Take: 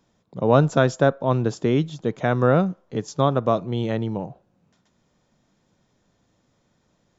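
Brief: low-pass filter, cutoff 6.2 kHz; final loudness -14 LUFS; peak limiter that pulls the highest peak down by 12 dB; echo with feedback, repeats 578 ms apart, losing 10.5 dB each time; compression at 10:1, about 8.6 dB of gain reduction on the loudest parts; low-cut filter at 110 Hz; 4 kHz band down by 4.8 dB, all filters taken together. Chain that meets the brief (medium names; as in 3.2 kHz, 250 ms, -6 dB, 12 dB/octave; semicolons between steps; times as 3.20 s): high-pass 110 Hz; low-pass 6.2 kHz; peaking EQ 4 kHz -5.5 dB; compression 10:1, threshold -20 dBFS; peak limiter -21 dBFS; feedback delay 578 ms, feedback 30%, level -10.5 dB; trim +18.5 dB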